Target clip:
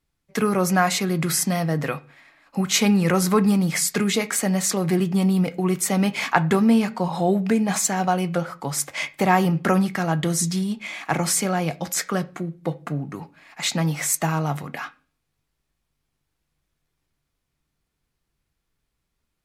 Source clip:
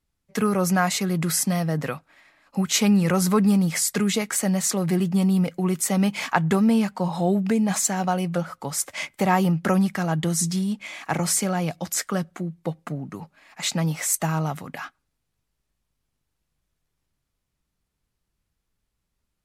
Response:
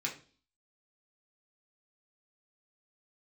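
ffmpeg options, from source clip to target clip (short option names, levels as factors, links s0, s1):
-filter_complex "[0:a]asplit=2[s0][s1];[1:a]atrim=start_sample=2205,lowpass=5100[s2];[s1][s2]afir=irnorm=-1:irlink=0,volume=0.299[s3];[s0][s3]amix=inputs=2:normalize=0,volume=1.12"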